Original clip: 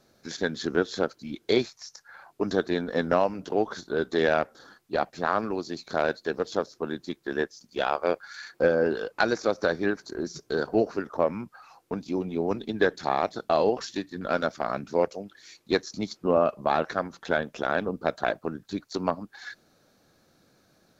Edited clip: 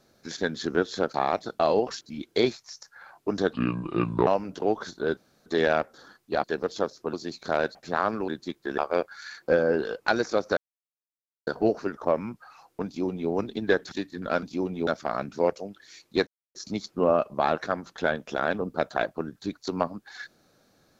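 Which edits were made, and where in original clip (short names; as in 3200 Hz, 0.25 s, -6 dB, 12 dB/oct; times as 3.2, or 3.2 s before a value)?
2.66–3.17 speed 69%
4.07 insert room tone 0.29 s
5.05–5.58 swap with 6.2–6.89
7.39–7.9 cut
9.69–10.59 mute
11.98–12.42 copy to 14.42
13.04–13.91 move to 1.14
15.82 insert silence 0.28 s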